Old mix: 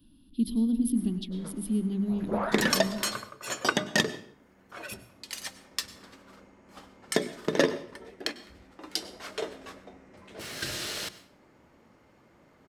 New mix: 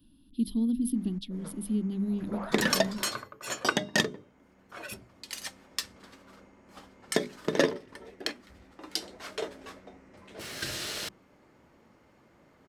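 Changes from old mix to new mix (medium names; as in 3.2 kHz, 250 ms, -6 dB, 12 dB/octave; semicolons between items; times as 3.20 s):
second sound -8.0 dB; reverb: off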